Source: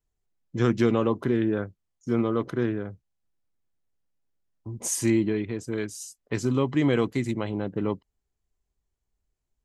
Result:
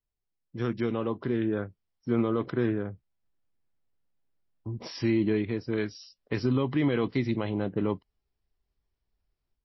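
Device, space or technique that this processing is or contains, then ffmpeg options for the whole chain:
low-bitrate web radio: -filter_complex "[0:a]asettb=1/sr,asplit=3[s0][s1][s2];[s0]atrim=end=2.664[s3];[s1]atrim=start=2.66:end=4.79,asetpts=PTS-STARTPTS,afade=t=in:d=0.004:c=qsin,afade=t=out:st=2.126:d=0.004:c=qsin,aemphasis=mode=reproduction:type=50fm[s4];[s2]atrim=start=4.786[s5];[s3][s4]acrossfade=d=0.004:c1=hsin:c2=qsin[s6];[s6][s5]acrossfade=d=0.004:c1=qsin:c2=hsin,dynaudnorm=f=950:g=3:m=3.35,alimiter=limit=0.398:level=0:latency=1:release=37,volume=0.398" -ar 16000 -c:a libmp3lame -b:a 24k

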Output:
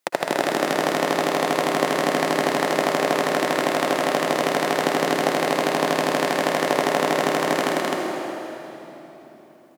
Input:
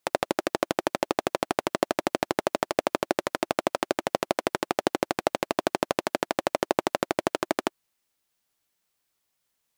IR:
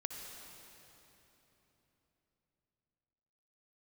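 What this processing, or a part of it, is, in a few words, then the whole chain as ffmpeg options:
stadium PA: -filter_complex "[0:a]highpass=f=130:w=0.5412,highpass=f=130:w=1.3066,equalizer=f=1900:t=o:w=0.28:g=4,aecho=1:1:209.9|259.5:0.631|0.794[s0];[1:a]atrim=start_sample=2205[s1];[s0][s1]afir=irnorm=-1:irlink=0,volume=1.78"

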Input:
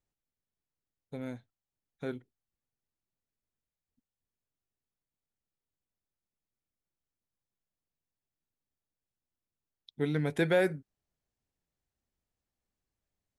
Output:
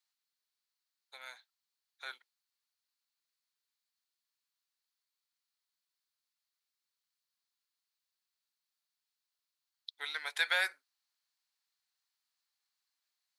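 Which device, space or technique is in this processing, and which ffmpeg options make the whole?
headphones lying on a table: -af "highpass=f=1000:w=0.5412,highpass=f=1000:w=1.3066,equalizer=f=4300:t=o:w=0.48:g=10.5,volume=1.5"

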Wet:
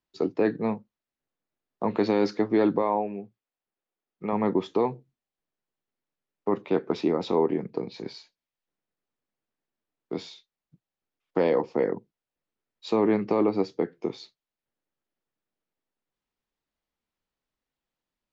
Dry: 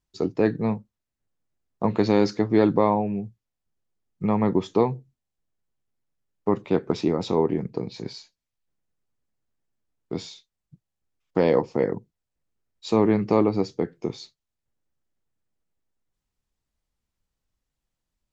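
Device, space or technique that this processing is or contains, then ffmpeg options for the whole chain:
DJ mixer with the lows and highs turned down: -filter_complex "[0:a]acrossover=split=200 4800:gain=0.2 1 0.2[s0][s1][s2];[s0][s1][s2]amix=inputs=3:normalize=0,alimiter=limit=0.224:level=0:latency=1:release=16,asettb=1/sr,asplit=3[s3][s4][s5];[s3]atrim=end=2.824[s6];[s4]atrim=start=2.82:end=4.33,asetpts=PTS-STARTPTS,afade=t=in:d=0.004:c=qsin,afade=t=out:st=1.506:d=0.004:c=qsin,bass=f=250:g=-8,treble=f=4000:g=-6[s7];[s5]atrim=start=4.326[s8];[s6][s7]acrossfade=d=0.004:c1=hsin:c2=qsin[s9];[s9][s8]acrossfade=d=0.004:c1=qsin:c2=hsin"

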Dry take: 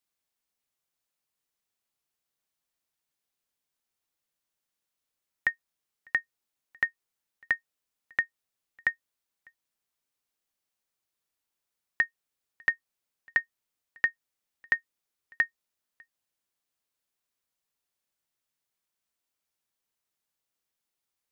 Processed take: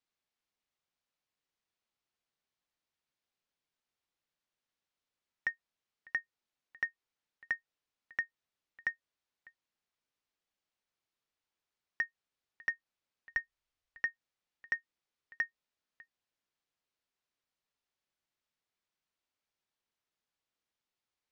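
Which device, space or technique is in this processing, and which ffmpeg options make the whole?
soft clipper into limiter: -filter_complex "[0:a]asoftclip=type=tanh:threshold=0.2,alimiter=limit=0.0891:level=0:latency=1:release=180,lowpass=5000,asplit=3[s0][s1][s2];[s0]afade=t=out:st=13.3:d=0.02[s3];[s1]asubboost=boost=5.5:cutoff=75,afade=t=in:st=13.3:d=0.02,afade=t=out:st=14.02:d=0.02[s4];[s2]afade=t=in:st=14.02:d=0.02[s5];[s3][s4][s5]amix=inputs=3:normalize=0,volume=0.841"

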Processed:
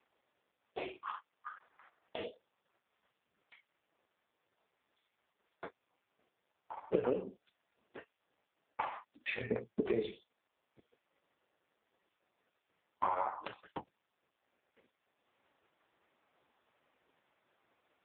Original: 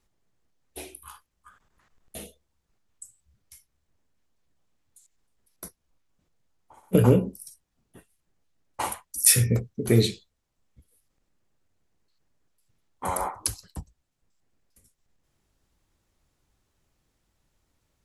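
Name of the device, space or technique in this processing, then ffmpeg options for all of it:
voicemail: -filter_complex "[0:a]asplit=3[s0][s1][s2];[s0]afade=t=out:st=1.09:d=0.02[s3];[s1]highpass=250,afade=t=in:st=1.09:d=0.02,afade=t=out:st=2.17:d=0.02[s4];[s2]afade=t=in:st=2.17:d=0.02[s5];[s3][s4][s5]amix=inputs=3:normalize=0,highpass=440,lowpass=2800,acompressor=threshold=0.01:ratio=8,volume=3.35" -ar 8000 -c:a libopencore_amrnb -b:a 4750

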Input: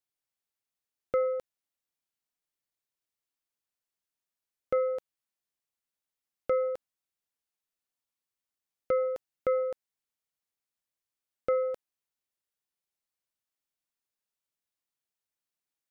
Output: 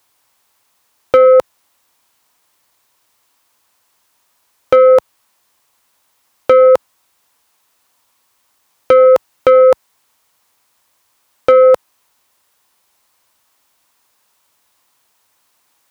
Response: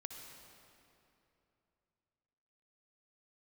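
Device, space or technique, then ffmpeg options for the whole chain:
mastering chain: -af "highpass=60,equalizer=f=160:t=o:w=0.67:g=-6,equalizer=f=400:t=o:w=0.67:g=-3,equalizer=f=1000:t=o:w=0.67:g=8,equalizer=f=470:t=o:w=0.77:g=1.5,acompressor=threshold=0.0398:ratio=2,asoftclip=type=tanh:threshold=0.0944,asoftclip=type=hard:threshold=0.0631,alimiter=level_in=29.9:limit=0.891:release=50:level=0:latency=1,volume=0.891"

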